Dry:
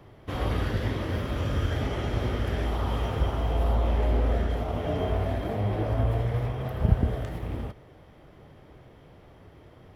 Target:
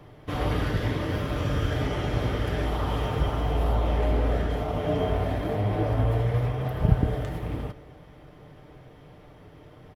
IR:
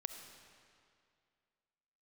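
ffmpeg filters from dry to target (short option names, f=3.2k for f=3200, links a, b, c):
-filter_complex "[0:a]aecho=1:1:6.7:0.36,asplit=2[a][b];[1:a]atrim=start_sample=2205,asetrate=37926,aresample=44100[c];[b][c]afir=irnorm=-1:irlink=0,volume=-10.5dB[d];[a][d]amix=inputs=2:normalize=0"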